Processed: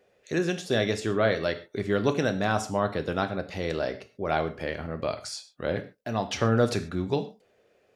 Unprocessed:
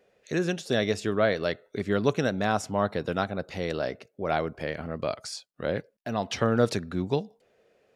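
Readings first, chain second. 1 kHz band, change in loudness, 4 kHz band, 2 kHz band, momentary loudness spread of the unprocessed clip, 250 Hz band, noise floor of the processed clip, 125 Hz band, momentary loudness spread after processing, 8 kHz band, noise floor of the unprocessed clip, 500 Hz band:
+0.5 dB, +0.5 dB, +0.5 dB, +1.0 dB, 9 LU, 0.0 dB, -66 dBFS, +1.5 dB, 8 LU, +1.0 dB, -72 dBFS, 0.0 dB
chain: gated-style reverb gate 160 ms falling, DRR 7.5 dB

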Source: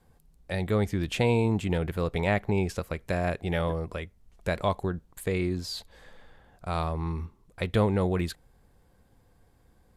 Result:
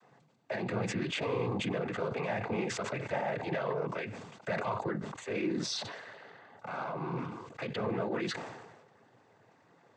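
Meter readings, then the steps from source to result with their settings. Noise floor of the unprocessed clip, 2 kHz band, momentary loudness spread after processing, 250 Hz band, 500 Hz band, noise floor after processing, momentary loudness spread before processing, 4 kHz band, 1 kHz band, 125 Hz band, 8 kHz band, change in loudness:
-63 dBFS, -3.0 dB, 10 LU, -6.5 dB, -5.0 dB, -65 dBFS, 12 LU, -1.5 dB, -3.0 dB, -11.0 dB, 0.0 dB, -6.0 dB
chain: overdrive pedal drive 17 dB, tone 1.7 kHz, clips at -11 dBFS; peak limiter -24 dBFS, peak gain reduction 11.5 dB; noise-vocoded speech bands 16; decay stretcher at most 46 dB/s; trim -2 dB

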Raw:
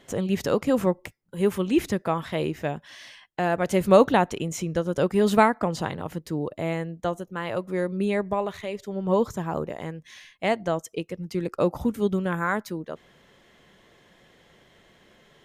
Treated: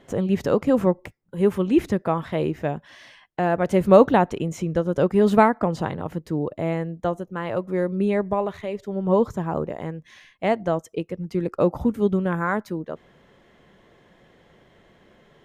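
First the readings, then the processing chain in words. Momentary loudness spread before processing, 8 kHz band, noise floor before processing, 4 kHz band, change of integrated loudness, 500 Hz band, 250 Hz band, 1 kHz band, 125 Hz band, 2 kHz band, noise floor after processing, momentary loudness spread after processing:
14 LU, no reading, -59 dBFS, -4.0 dB, +3.0 dB, +3.0 dB, +3.5 dB, +2.0 dB, +3.5 dB, -0.5 dB, -58 dBFS, 13 LU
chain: treble shelf 2.3 kHz -11 dB; trim +3.5 dB

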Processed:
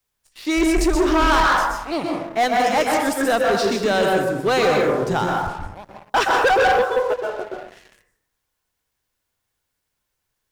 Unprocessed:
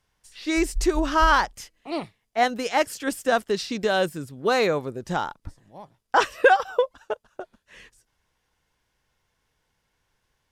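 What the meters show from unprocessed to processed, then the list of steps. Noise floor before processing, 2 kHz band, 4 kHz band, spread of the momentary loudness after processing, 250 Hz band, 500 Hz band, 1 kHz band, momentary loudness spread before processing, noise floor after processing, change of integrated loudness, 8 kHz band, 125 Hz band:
-75 dBFS, +4.0 dB, +5.0 dB, 11 LU, +6.5 dB, +5.5 dB, +5.0 dB, 15 LU, -77 dBFS, +5.0 dB, +5.0 dB, +6.0 dB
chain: plate-style reverb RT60 0.9 s, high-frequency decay 0.35×, pre-delay 110 ms, DRR -0.5 dB; waveshaping leveller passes 3; word length cut 12-bit, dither triangular; trim -6.5 dB

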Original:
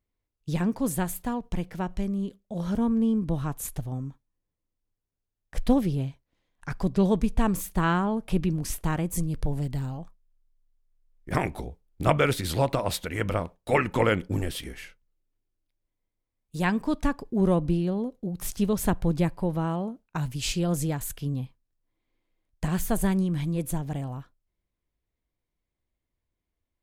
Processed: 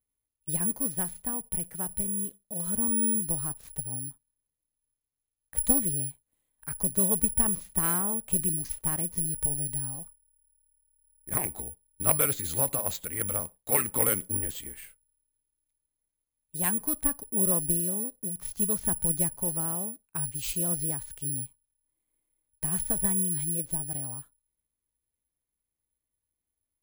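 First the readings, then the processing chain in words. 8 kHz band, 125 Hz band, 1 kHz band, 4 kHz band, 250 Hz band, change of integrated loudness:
+12.5 dB, -9.0 dB, -8.5 dB, -8.5 dB, -9.0 dB, +0.5 dB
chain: Chebyshev shaper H 6 -19 dB, 8 -30 dB, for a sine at -4.5 dBFS; careless resampling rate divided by 4×, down filtered, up zero stuff; trim -8.5 dB

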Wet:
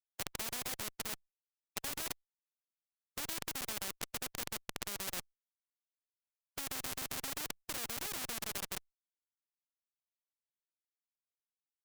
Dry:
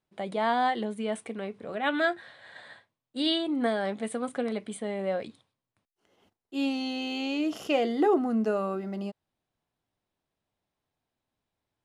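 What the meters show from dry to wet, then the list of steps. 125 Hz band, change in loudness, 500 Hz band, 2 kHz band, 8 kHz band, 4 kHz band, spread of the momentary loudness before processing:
no reading, -10.5 dB, -22.5 dB, -10.5 dB, +9.0 dB, -7.0 dB, 13 LU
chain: square tremolo 7.6 Hz, depth 65%, duty 70%; Schmitt trigger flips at -28.5 dBFS; spectrum-flattening compressor 4:1; trim +8 dB

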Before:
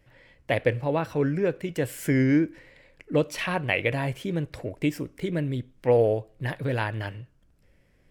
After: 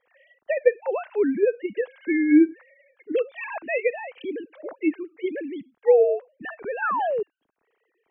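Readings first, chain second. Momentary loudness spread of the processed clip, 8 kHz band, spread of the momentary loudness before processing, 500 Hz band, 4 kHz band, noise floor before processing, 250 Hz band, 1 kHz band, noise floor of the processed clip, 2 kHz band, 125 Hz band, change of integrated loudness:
16 LU, under -35 dB, 10 LU, +4.0 dB, under -10 dB, -62 dBFS, +3.0 dB, +3.0 dB, -75 dBFS, -0.5 dB, under -25 dB, +2.5 dB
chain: formants replaced by sine waves; painted sound fall, 6.82–7.23 s, 390–1600 Hz -26 dBFS; trim +2 dB

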